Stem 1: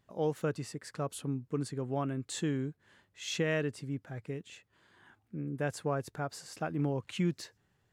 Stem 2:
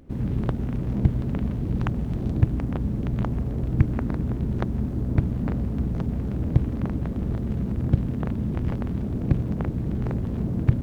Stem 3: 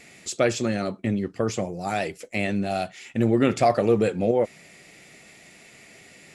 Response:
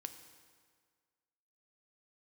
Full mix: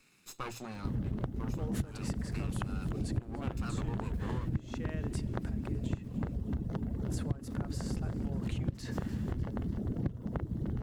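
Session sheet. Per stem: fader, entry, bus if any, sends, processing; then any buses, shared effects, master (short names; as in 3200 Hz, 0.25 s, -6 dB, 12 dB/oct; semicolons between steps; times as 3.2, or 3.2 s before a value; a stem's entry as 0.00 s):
-12.0 dB, 1.40 s, muted 6.08–7.1, send -4.5 dB, echo send -16.5 dB, sustainer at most 21 dB/s
-0.5 dB, 0.75 s, no send, echo send -11.5 dB, notch 2400 Hz, Q 5.6; reverb removal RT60 1.7 s
-15.0 dB, 0.00 s, no send, no echo send, minimum comb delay 0.77 ms; notches 60/120 Hz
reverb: on, RT60 1.8 s, pre-delay 3 ms
echo: feedback echo 0.299 s, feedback 54%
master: compressor 6:1, threshold -31 dBFS, peak gain reduction 18 dB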